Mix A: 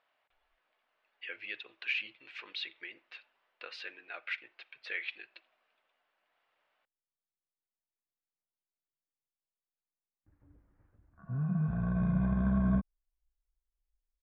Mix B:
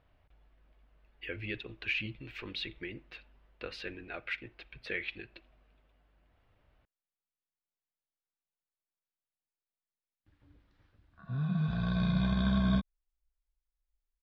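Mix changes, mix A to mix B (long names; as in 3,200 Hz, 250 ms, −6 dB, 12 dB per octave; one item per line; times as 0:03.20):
speech: remove band-pass filter 790–6,400 Hz
background: remove Gaussian smoothing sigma 5.1 samples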